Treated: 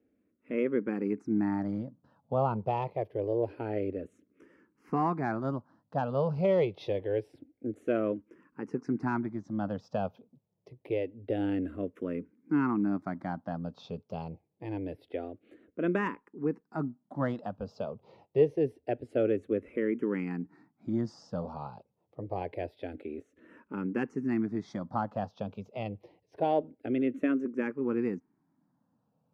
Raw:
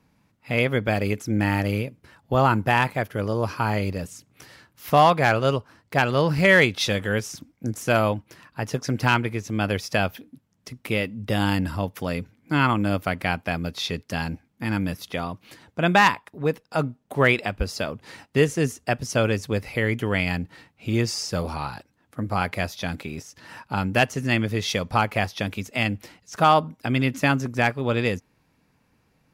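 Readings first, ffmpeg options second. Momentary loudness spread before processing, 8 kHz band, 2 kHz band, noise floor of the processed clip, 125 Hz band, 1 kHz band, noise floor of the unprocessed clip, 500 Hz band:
14 LU, under -30 dB, -19.5 dB, -77 dBFS, -12.5 dB, -12.5 dB, -67 dBFS, -6.0 dB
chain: -filter_complex "[0:a]aeval=exprs='0.501*(cos(1*acos(clip(val(0)/0.501,-1,1)))-cos(1*PI/2))+0.0141*(cos(6*acos(clip(val(0)/0.501,-1,1)))-cos(6*PI/2))':c=same,bandpass=f=350:t=q:w=1.3:csg=0,asplit=2[a][b];[b]afreqshift=-0.26[c];[a][c]amix=inputs=2:normalize=1"

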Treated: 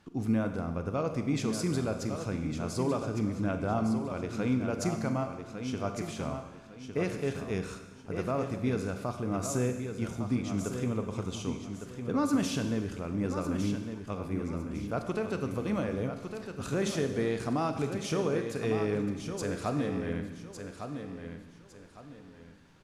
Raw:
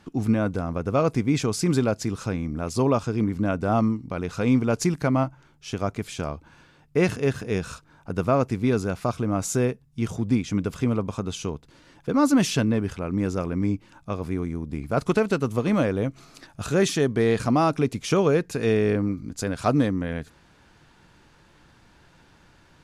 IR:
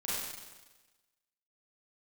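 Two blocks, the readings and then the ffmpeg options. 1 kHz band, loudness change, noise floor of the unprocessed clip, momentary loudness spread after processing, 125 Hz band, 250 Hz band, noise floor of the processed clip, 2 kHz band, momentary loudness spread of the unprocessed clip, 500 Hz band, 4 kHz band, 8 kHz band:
-8.0 dB, -8.0 dB, -57 dBFS, 10 LU, -7.5 dB, -7.5 dB, -51 dBFS, -8.0 dB, 10 LU, -8.0 dB, -7.5 dB, -7.0 dB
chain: -filter_complex "[0:a]alimiter=limit=-12dB:level=0:latency=1:release=269,aecho=1:1:1156|2312|3468|4624:0.398|0.119|0.0358|0.0107,asplit=2[a][b];[1:a]atrim=start_sample=2205[c];[b][c]afir=irnorm=-1:irlink=0,volume=-10dB[d];[a][d]amix=inputs=2:normalize=0,volume=-9dB"

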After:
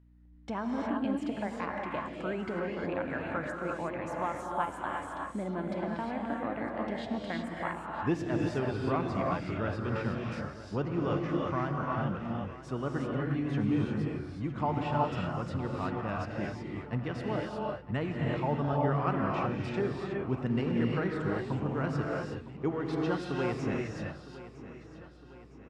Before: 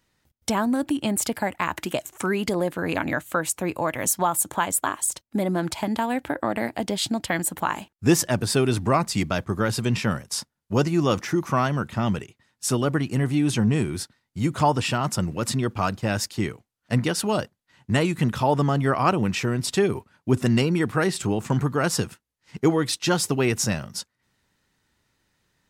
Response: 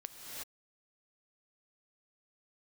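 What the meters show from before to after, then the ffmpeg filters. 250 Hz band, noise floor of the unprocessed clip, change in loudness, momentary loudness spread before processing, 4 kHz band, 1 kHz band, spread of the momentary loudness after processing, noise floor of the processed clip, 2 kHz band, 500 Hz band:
-8.0 dB, -78 dBFS, -9.0 dB, 7 LU, -17.5 dB, -7.5 dB, 7 LU, -49 dBFS, -9.5 dB, -8.0 dB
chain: -filter_complex "[0:a]lowpass=2.2k,aeval=exprs='val(0)+0.00447*(sin(2*PI*60*n/s)+sin(2*PI*2*60*n/s)/2+sin(2*PI*3*60*n/s)/3+sin(2*PI*4*60*n/s)/4+sin(2*PI*5*60*n/s)/5)':c=same,aecho=1:1:959|1918|2877|3836|4795:0.168|0.0839|0.042|0.021|0.0105[a];[1:a]atrim=start_sample=2205[b];[a][b]afir=irnorm=-1:irlink=0,volume=-6.5dB"

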